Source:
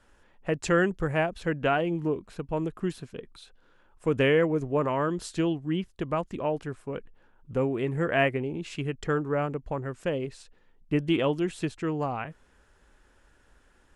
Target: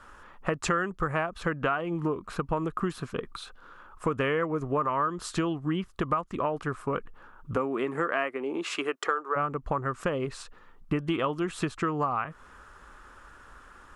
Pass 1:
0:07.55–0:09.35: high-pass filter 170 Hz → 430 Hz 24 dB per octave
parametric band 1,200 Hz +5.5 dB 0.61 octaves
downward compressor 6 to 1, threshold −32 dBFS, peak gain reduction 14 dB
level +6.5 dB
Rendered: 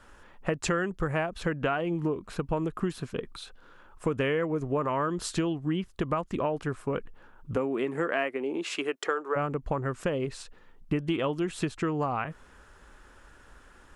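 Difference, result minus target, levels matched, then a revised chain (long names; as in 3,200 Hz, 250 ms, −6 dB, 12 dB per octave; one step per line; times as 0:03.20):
1,000 Hz band −3.0 dB
0:07.55–0:09.35: high-pass filter 170 Hz → 430 Hz 24 dB per octave
parametric band 1,200 Hz +15.5 dB 0.61 octaves
downward compressor 6 to 1, threshold −32 dBFS, peak gain reduction 17 dB
level +6.5 dB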